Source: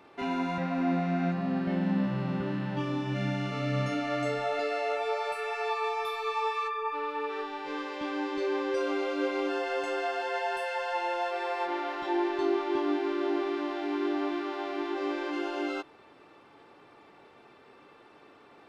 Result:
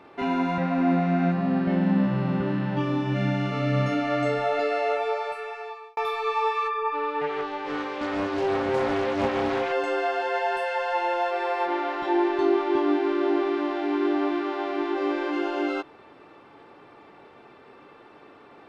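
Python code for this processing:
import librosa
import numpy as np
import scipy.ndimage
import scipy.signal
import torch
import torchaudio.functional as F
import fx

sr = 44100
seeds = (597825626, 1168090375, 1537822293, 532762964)

y = fx.doppler_dist(x, sr, depth_ms=0.55, at=(7.21, 9.72))
y = fx.edit(y, sr, fx.fade_out_span(start_s=4.9, length_s=1.07), tone=tone)
y = fx.high_shelf(y, sr, hz=4300.0, db=-9.5)
y = F.gain(torch.from_numpy(y), 6.0).numpy()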